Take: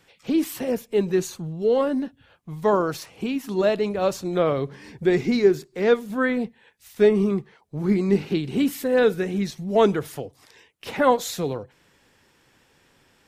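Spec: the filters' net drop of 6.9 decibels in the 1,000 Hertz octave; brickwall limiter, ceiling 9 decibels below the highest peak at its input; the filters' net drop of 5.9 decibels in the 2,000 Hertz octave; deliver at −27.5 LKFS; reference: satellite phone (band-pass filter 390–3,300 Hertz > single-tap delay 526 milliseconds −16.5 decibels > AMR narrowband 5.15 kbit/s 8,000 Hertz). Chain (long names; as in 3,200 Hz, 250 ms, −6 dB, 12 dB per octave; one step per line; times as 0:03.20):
parametric band 1,000 Hz −8 dB
parametric band 2,000 Hz −4 dB
brickwall limiter −17 dBFS
band-pass filter 390–3,300 Hz
single-tap delay 526 ms −16.5 dB
level +4.5 dB
AMR narrowband 5.15 kbit/s 8,000 Hz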